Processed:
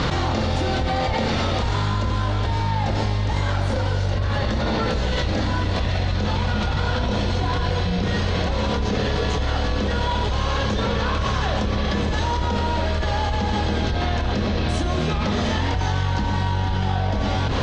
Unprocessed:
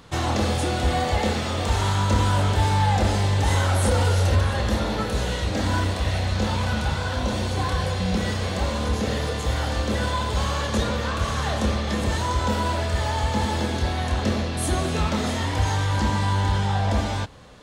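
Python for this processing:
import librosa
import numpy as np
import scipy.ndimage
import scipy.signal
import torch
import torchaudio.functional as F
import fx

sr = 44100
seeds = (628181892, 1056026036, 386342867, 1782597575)

y = fx.octave_divider(x, sr, octaves=1, level_db=-5.0)
y = fx.doppler_pass(y, sr, speed_mps=14, closest_m=14.0, pass_at_s=5.65)
y = fx.rider(y, sr, range_db=10, speed_s=0.5)
y = scipy.signal.sosfilt(scipy.signal.butter(4, 5700.0, 'lowpass', fs=sr, output='sos'), y)
y = fx.env_flatten(y, sr, amount_pct=100)
y = y * 10.0 ** (1.5 / 20.0)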